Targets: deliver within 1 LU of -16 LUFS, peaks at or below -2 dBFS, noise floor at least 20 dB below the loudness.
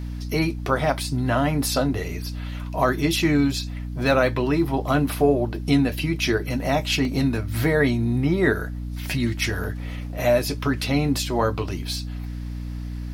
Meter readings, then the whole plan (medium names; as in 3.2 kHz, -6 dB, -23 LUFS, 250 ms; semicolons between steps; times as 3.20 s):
dropouts 2; longest dropout 1.7 ms; hum 60 Hz; highest harmonic 300 Hz; hum level -28 dBFS; loudness -23.5 LUFS; peak level -6.0 dBFS; loudness target -16.0 LUFS
-> interpolate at 7.05/9.64 s, 1.7 ms; hum notches 60/120/180/240/300 Hz; trim +7.5 dB; peak limiter -2 dBFS